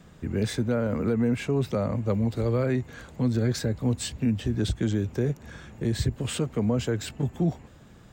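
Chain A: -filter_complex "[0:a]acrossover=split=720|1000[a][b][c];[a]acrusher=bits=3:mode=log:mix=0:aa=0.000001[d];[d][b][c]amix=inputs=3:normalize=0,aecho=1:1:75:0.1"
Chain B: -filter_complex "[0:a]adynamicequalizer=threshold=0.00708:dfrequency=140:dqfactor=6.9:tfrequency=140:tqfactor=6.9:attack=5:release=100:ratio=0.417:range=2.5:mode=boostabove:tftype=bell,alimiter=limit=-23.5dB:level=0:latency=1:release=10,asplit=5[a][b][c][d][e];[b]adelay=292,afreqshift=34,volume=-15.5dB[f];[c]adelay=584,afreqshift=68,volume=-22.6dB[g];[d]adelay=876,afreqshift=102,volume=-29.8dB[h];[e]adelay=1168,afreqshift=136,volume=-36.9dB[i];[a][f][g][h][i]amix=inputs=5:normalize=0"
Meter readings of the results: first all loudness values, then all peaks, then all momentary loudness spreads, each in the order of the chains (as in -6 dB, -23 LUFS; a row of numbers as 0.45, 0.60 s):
-27.0, -32.0 LUFS; -14.0, -21.5 dBFS; 5, 5 LU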